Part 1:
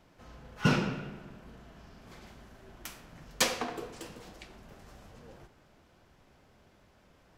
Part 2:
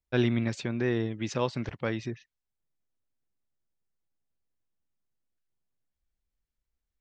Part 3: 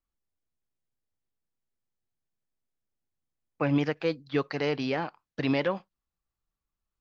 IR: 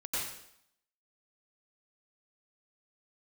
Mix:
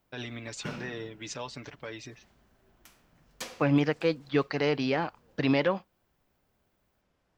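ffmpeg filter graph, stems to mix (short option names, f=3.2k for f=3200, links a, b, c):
-filter_complex "[0:a]volume=-12.5dB[a];[1:a]aemphasis=mode=production:type=bsi,aecho=1:1:6.9:0.6,alimiter=limit=-22dB:level=0:latency=1:release=87,volume=-5.5dB[b];[2:a]volume=1.5dB[c];[a][b][c]amix=inputs=3:normalize=0"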